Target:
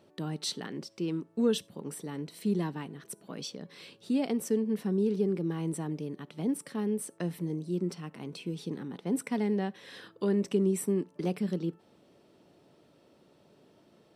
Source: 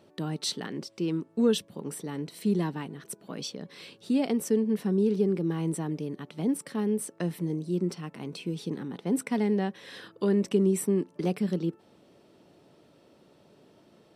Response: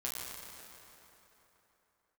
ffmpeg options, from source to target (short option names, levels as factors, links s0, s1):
-filter_complex "[0:a]asplit=2[s0][s1];[1:a]atrim=start_sample=2205,atrim=end_sample=3528,asetrate=34398,aresample=44100[s2];[s1][s2]afir=irnorm=-1:irlink=0,volume=0.0708[s3];[s0][s3]amix=inputs=2:normalize=0,volume=0.668"